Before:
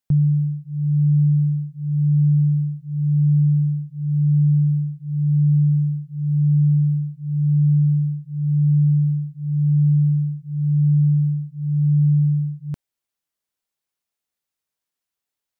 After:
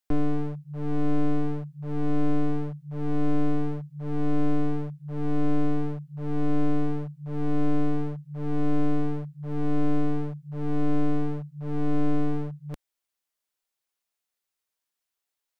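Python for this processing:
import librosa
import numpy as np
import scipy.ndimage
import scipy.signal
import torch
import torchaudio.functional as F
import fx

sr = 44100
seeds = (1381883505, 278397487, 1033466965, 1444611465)

y = np.minimum(x, 2.0 * 10.0 ** (-24.0 / 20.0) - x)
y = fx.peak_eq(y, sr, hz=130.0, db=-8.5, octaves=2.2)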